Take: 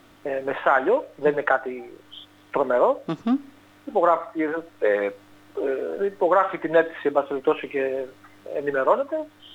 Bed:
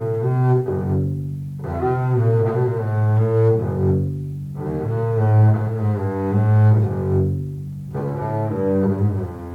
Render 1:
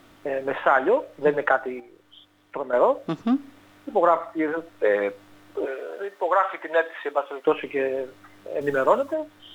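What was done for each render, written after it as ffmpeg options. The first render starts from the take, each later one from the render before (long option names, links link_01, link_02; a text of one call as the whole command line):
ffmpeg -i in.wav -filter_complex "[0:a]asettb=1/sr,asplit=3[link_01][link_02][link_03];[link_01]atrim=end=5.654[link_04];[link_02]atrim=start=5.65:end=7.47,asetpts=PTS-STARTPTS,afade=type=in:duration=0.004:curve=qsin,afade=type=out:start_time=1.816:duration=0.004:curve=qsin,highpass=610[link_05];[link_03]atrim=start=7.466[link_06];[link_04][link_05]acrossfade=duration=0.004:curve1=hsin:curve2=qsin[link_07];[link_07][link_06]acrossfade=duration=0.004:curve1=qsin:curve2=hsin,asettb=1/sr,asplit=3[link_08][link_09][link_10];[link_08]atrim=end=8.614[link_11];[link_09]atrim=start=8.61:end=9.14,asetpts=PTS-STARTPTS,afade=type=in:duration=0.004:curve=qsin,afade=type=out:start_time=0.526:duration=0.004:curve=qsin,bass=frequency=250:gain=6,treble=frequency=4000:gain=10[link_12];[link_10]atrim=start=9.136[link_13];[link_11][link_12]acrossfade=duration=0.004:curve1=hsin:curve2=qsin[link_14];[link_14][link_13]acrossfade=duration=0.004:curve1=qsin:curve2=hsin,asplit=3[link_15][link_16][link_17];[link_15]atrim=end=1.802[link_18];[link_16]atrim=start=1.798:end=2.732,asetpts=PTS-STARTPTS,volume=-8dB[link_19];[link_17]atrim=start=2.728[link_20];[link_18][link_19]acrossfade=duration=0.004:curve1=hsin:curve2=hsin[link_21];[link_21][link_20]acrossfade=duration=0.004:curve1=hsin:curve2=hsin" out.wav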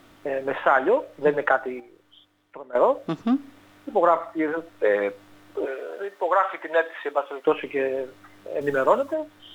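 ffmpeg -i in.wav -filter_complex "[0:a]asplit=2[link_01][link_02];[link_01]atrim=end=2.75,asetpts=PTS-STARTPTS,afade=type=out:start_time=1.76:duration=0.99:silence=0.211349[link_03];[link_02]atrim=start=2.75,asetpts=PTS-STARTPTS,afade=type=in:duration=0.004:curve=hsin:silence=0.211349[link_04];[link_03][link_04]concat=n=2:v=0:a=1" out.wav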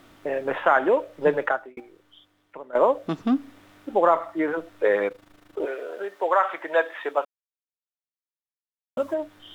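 ffmpeg -i in.wav -filter_complex "[0:a]asettb=1/sr,asplit=3[link_01][link_02][link_03];[link_01]atrim=end=5.084[link_04];[link_02]atrim=start=5.08:end=5.6,asetpts=PTS-STARTPTS,afade=type=in:duration=0.004:curve=qsin,afade=type=out:start_time=0.516:duration=0.004:curve=qsin,tremolo=f=26:d=0.788[link_05];[link_03]atrim=start=5.596[link_06];[link_04][link_05]acrossfade=duration=0.004:curve1=hsin:curve2=qsin[link_07];[link_07][link_06]acrossfade=duration=0.004:curve1=qsin:curve2=hsin,asplit=4[link_08][link_09][link_10][link_11];[link_08]atrim=end=1.77,asetpts=PTS-STARTPTS,afade=type=out:start_time=1.37:duration=0.4[link_12];[link_09]atrim=start=1.77:end=7.25,asetpts=PTS-STARTPTS,afade=type=in:duration=0.004:curve=hsin,afade=type=out:start_time=5.476:duration=0.004:curve=hsin[link_13];[link_10]atrim=start=7.25:end=8.97,asetpts=PTS-STARTPTS,volume=0[link_14];[link_11]atrim=start=8.97,asetpts=PTS-STARTPTS,afade=type=in:duration=0.004:curve=hsin[link_15];[link_12][link_13][link_14][link_15]concat=n=4:v=0:a=1" out.wav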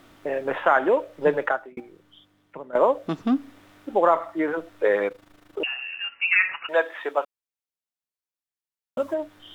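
ffmpeg -i in.wav -filter_complex "[0:a]asettb=1/sr,asplit=3[link_01][link_02][link_03];[link_01]atrim=end=1.724[link_04];[link_02]atrim=start=1.72:end=2.76,asetpts=PTS-STARTPTS,afade=type=in:duration=0.004:curve=qsin,afade=type=out:start_time=1.036:duration=0.004:curve=qsin,equalizer=frequency=160:width_type=o:width=1.3:gain=10.5[link_05];[link_03]atrim=start=2.756[link_06];[link_04][link_05]acrossfade=duration=0.004:curve1=hsin:curve2=qsin[link_07];[link_07][link_06]acrossfade=duration=0.004:curve1=qsin:curve2=hsin,asettb=1/sr,asplit=3[link_08][link_09][link_10];[link_08]atrim=end=5.634[link_11];[link_09]atrim=start=5.63:end=6.69,asetpts=PTS-STARTPTS,afade=type=in:duration=0.004:curve=qsin,afade=type=out:start_time=1.056:duration=0.004:curve=qsin,lowpass=frequency=2700:width_type=q:width=0.5098,lowpass=frequency=2700:width_type=q:width=0.6013,lowpass=frequency=2700:width_type=q:width=0.9,lowpass=frequency=2700:width_type=q:width=2.563,afreqshift=-3200[link_12];[link_10]atrim=start=6.686[link_13];[link_11][link_12]acrossfade=duration=0.004:curve1=hsin:curve2=qsin[link_14];[link_14][link_13]acrossfade=duration=0.004:curve1=qsin:curve2=hsin" out.wav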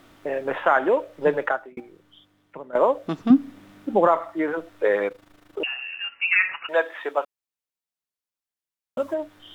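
ffmpeg -i in.wav -filter_complex "[0:a]asettb=1/sr,asplit=3[link_01][link_02][link_03];[link_01]atrim=end=3.304[link_04];[link_02]atrim=start=3.3:end=4.07,asetpts=PTS-STARTPTS,afade=type=in:duration=0.004:curve=qsin,afade=type=out:start_time=0.766:duration=0.004:curve=qsin,equalizer=frequency=190:width=1.2:gain=12[link_05];[link_03]atrim=start=4.066[link_06];[link_04][link_05]acrossfade=duration=0.004:curve1=hsin:curve2=qsin[link_07];[link_07][link_06]acrossfade=duration=0.004:curve1=qsin:curve2=hsin" out.wav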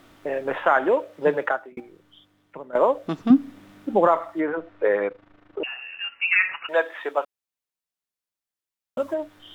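ffmpeg -i in.wav -filter_complex "[0:a]asettb=1/sr,asplit=3[link_01][link_02][link_03];[link_01]atrim=end=0.914[link_04];[link_02]atrim=start=0.91:end=1.72,asetpts=PTS-STARTPTS,afade=type=in:duration=0.004:curve=qsin,afade=type=out:start_time=0.806:duration=0.004:curve=qsin,highpass=98[link_05];[link_03]atrim=start=1.716[link_06];[link_04][link_05]acrossfade=duration=0.004:curve1=hsin:curve2=qsin[link_07];[link_07][link_06]acrossfade=duration=0.004:curve1=qsin:curve2=hsin,asplit=3[link_08][link_09][link_10];[link_08]afade=type=out:start_time=4.4:duration=0.02[link_11];[link_09]lowpass=2400,afade=type=in:start_time=4.4:duration=0.02,afade=type=out:start_time=5.97:duration=0.02[link_12];[link_10]afade=type=in:start_time=5.97:duration=0.02[link_13];[link_11][link_12][link_13]amix=inputs=3:normalize=0" out.wav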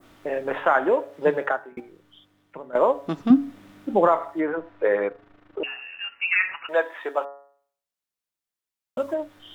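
ffmpeg -i in.wav -af "bandreject=frequency=140.4:width_type=h:width=4,bandreject=frequency=280.8:width_type=h:width=4,bandreject=frequency=421.2:width_type=h:width=4,bandreject=frequency=561.6:width_type=h:width=4,bandreject=frequency=702:width_type=h:width=4,bandreject=frequency=842.4:width_type=h:width=4,bandreject=frequency=982.8:width_type=h:width=4,bandreject=frequency=1123.2:width_type=h:width=4,bandreject=frequency=1263.6:width_type=h:width=4,bandreject=frequency=1404:width_type=h:width=4,bandreject=frequency=1544.4:width_type=h:width=4,bandreject=frequency=1684.8:width_type=h:width=4,bandreject=frequency=1825.2:width_type=h:width=4,bandreject=frequency=1965.6:width_type=h:width=4,adynamicequalizer=threshold=0.0112:dfrequency=3300:dqfactor=0.71:tfrequency=3300:tqfactor=0.71:attack=5:release=100:ratio=0.375:range=2:mode=cutabove:tftype=bell" out.wav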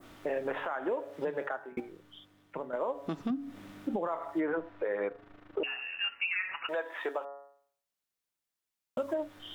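ffmpeg -i in.wav -af "acompressor=threshold=-23dB:ratio=4,alimiter=limit=-23.5dB:level=0:latency=1:release=269" out.wav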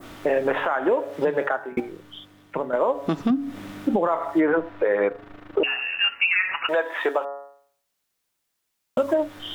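ffmpeg -i in.wav -af "volume=11.5dB" out.wav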